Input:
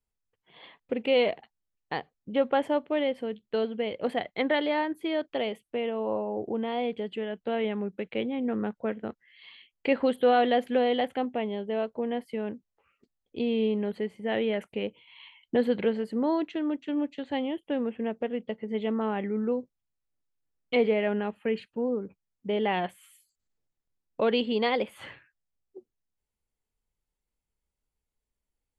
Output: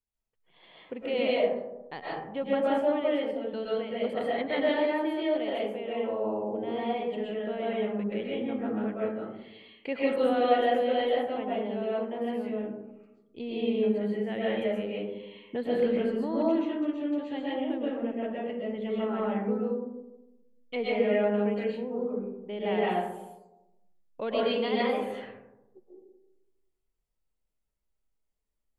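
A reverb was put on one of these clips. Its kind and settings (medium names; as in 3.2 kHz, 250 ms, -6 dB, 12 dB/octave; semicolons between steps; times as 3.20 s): algorithmic reverb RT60 1 s, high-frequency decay 0.3×, pre-delay 90 ms, DRR -6.5 dB; trim -8.5 dB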